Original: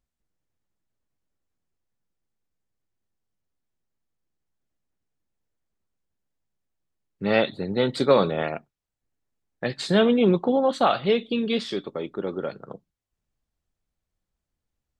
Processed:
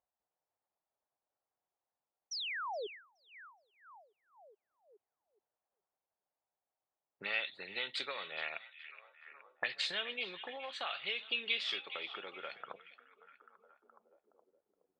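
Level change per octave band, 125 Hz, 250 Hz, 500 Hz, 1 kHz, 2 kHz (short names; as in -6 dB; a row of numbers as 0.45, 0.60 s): under -35 dB, -33.5 dB, -24.0 dB, -16.5 dB, -5.0 dB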